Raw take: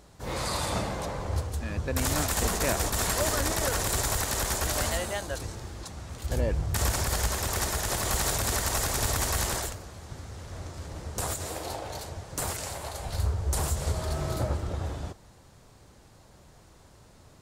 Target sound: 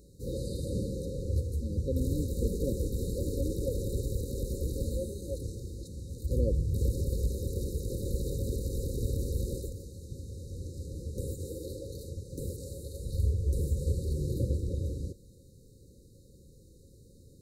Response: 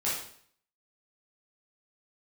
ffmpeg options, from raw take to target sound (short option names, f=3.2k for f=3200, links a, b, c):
-filter_complex "[0:a]equalizer=f=5.2k:w=1.1:g=-8,acrossover=split=2900[a][b];[b]acompressor=threshold=-49dB:ratio=4:attack=1:release=60[c];[a][c]amix=inputs=2:normalize=0,afftfilt=real='re*(1-between(b*sr/4096,560,3700))':imag='im*(1-between(b*sr/4096,560,3700))':win_size=4096:overlap=0.75"